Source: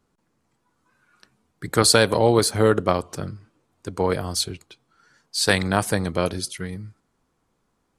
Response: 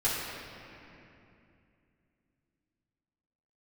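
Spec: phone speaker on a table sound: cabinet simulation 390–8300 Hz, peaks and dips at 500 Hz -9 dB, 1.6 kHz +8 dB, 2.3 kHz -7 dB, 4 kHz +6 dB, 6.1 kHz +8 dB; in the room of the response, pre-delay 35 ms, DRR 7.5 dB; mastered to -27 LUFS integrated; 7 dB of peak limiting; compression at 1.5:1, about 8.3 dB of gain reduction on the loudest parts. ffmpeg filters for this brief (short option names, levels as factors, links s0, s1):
-filter_complex "[0:a]acompressor=threshold=0.0178:ratio=1.5,alimiter=limit=0.168:level=0:latency=1,asplit=2[s0][s1];[1:a]atrim=start_sample=2205,adelay=35[s2];[s1][s2]afir=irnorm=-1:irlink=0,volume=0.133[s3];[s0][s3]amix=inputs=2:normalize=0,highpass=f=390:w=0.5412,highpass=f=390:w=1.3066,equalizer=f=500:t=q:w=4:g=-9,equalizer=f=1600:t=q:w=4:g=8,equalizer=f=2300:t=q:w=4:g=-7,equalizer=f=4000:t=q:w=4:g=6,equalizer=f=6100:t=q:w=4:g=8,lowpass=f=8300:w=0.5412,lowpass=f=8300:w=1.3066,volume=1.33"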